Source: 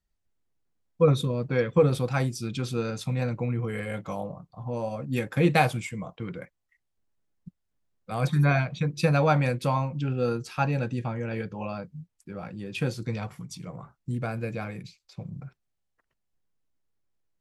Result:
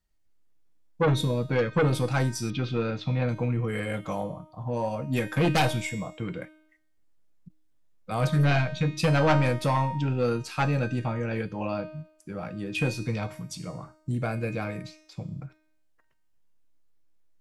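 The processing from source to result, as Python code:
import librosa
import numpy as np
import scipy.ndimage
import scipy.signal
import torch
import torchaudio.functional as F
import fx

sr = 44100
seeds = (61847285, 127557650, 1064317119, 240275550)

y = fx.fold_sine(x, sr, drive_db=10, ceiling_db=-6.0)
y = fx.comb_fb(y, sr, f0_hz=310.0, decay_s=0.74, harmonics='all', damping=0.0, mix_pct=80)
y = fx.lowpass(y, sr, hz=3900.0, slope=24, at=(2.5, 3.29))
y = fx.end_taper(y, sr, db_per_s=420.0)
y = y * librosa.db_to_amplitude(1.5)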